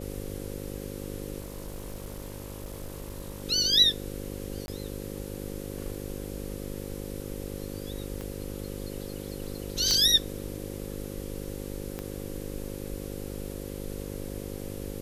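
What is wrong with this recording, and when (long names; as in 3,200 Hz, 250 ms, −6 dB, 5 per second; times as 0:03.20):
mains buzz 50 Hz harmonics 11 −38 dBFS
0:01.40–0:03.43: clipping −33.5 dBFS
0:04.66–0:04.68: drop-out 21 ms
0:08.21: click −23 dBFS
0:09.91: click −11 dBFS
0:11.99: click −20 dBFS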